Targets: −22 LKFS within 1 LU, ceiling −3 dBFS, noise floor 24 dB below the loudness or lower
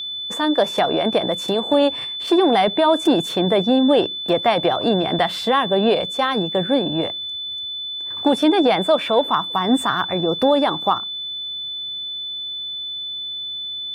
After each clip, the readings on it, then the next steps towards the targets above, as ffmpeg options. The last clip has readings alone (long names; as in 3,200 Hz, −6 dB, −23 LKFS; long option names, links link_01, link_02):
interfering tone 3,500 Hz; level of the tone −26 dBFS; integrated loudness −19.5 LKFS; sample peak −6.0 dBFS; target loudness −22.0 LKFS
→ -af "bandreject=frequency=3500:width=30"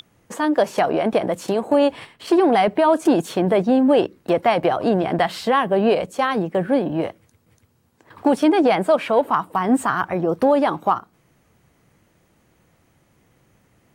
interfering tone none found; integrated loudness −19.5 LKFS; sample peak −6.5 dBFS; target loudness −22.0 LKFS
→ -af "volume=-2.5dB"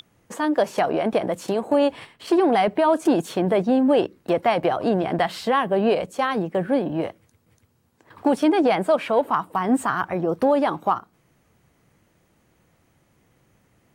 integrated loudness −22.0 LKFS; sample peak −9.0 dBFS; background noise floor −64 dBFS